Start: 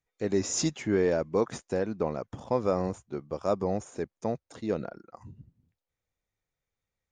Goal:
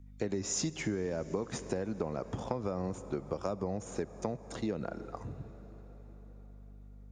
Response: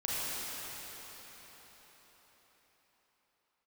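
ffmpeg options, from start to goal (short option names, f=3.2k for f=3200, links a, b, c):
-filter_complex "[0:a]aeval=exprs='val(0)+0.00178*(sin(2*PI*50*n/s)+sin(2*PI*2*50*n/s)/2+sin(2*PI*3*50*n/s)/3+sin(2*PI*4*50*n/s)/4+sin(2*PI*5*50*n/s)/5)':c=same,acrossover=split=220[a][b];[b]acompressor=threshold=-29dB:ratio=6[c];[a][c]amix=inputs=2:normalize=0,asplit=2[d][e];[1:a]atrim=start_sample=2205[f];[e][f]afir=irnorm=-1:irlink=0,volume=-22.5dB[g];[d][g]amix=inputs=2:normalize=0,acompressor=threshold=-35dB:ratio=5,volume=4dB"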